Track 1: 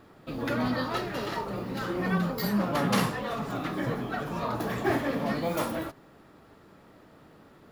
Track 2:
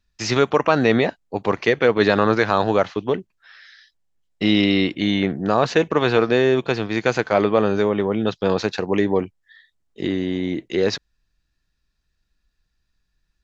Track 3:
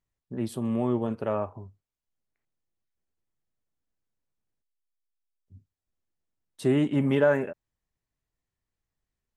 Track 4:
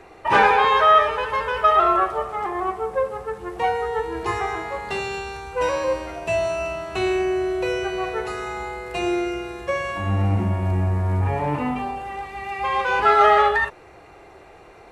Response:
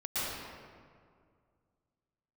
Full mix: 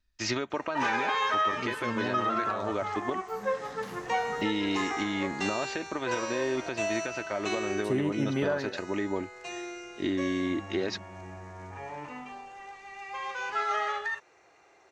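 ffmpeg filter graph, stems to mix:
-filter_complex "[0:a]acompressor=threshold=-33dB:ratio=6,adelay=900,volume=-6.5dB[link_01];[1:a]aecho=1:1:3.2:0.49,acompressor=threshold=-17dB:ratio=6,volume=-7dB,asplit=2[link_02][link_03];[2:a]adelay=1250,volume=-2dB[link_04];[3:a]highpass=frequency=400:poles=1,adynamicequalizer=threshold=0.0316:dfrequency=640:dqfactor=0.79:tfrequency=640:tqfactor=0.79:attack=5:release=100:ratio=0.375:range=2.5:mode=cutabove:tftype=bell,lowpass=frequency=6400:width_type=q:width=4.1,adelay=500,volume=-4.5dB,afade=type=out:start_time=7.71:duration=0.29:silence=0.354813[link_05];[link_03]apad=whole_len=379911[link_06];[link_01][link_06]sidechaincompress=threshold=-59dB:ratio=8:attack=44:release=160[link_07];[link_07][link_02][link_04][link_05]amix=inputs=4:normalize=0,equalizer=frequency=1800:width=1.5:gain=3,alimiter=limit=-18.5dB:level=0:latency=1:release=393"

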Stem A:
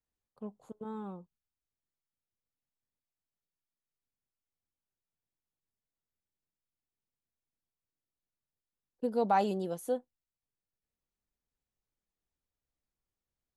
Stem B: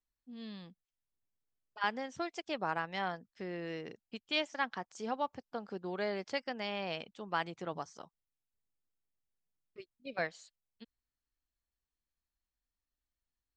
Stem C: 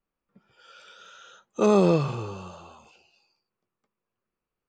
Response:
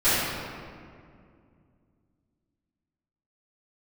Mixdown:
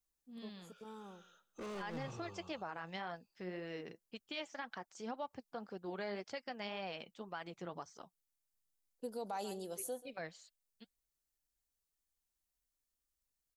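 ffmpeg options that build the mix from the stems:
-filter_complex "[0:a]bass=frequency=250:gain=-7,treble=frequency=4000:gain=15,volume=-8dB,asplit=2[link_01][link_02];[link_02]volume=-18.5dB[link_03];[1:a]flanger=delay=1.3:depth=4.8:regen=57:speed=1.9:shape=sinusoidal,volume=0.5dB[link_04];[2:a]asoftclip=type=hard:threshold=-26.5dB,volume=-16dB,asplit=2[link_05][link_06];[link_06]volume=-20dB[link_07];[link_03][link_07]amix=inputs=2:normalize=0,aecho=0:1:136:1[link_08];[link_01][link_04][link_05][link_08]amix=inputs=4:normalize=0,alimiter=level_in=8.5dB:limit=-24dB:level=0:latency=1:release=66,volume=-8.5dB"

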